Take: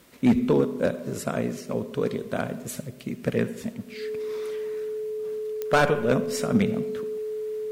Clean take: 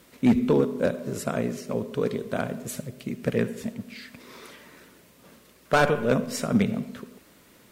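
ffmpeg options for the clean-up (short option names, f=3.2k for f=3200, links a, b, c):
-af "adeclick=t=4,bandreject=f=430:w=30"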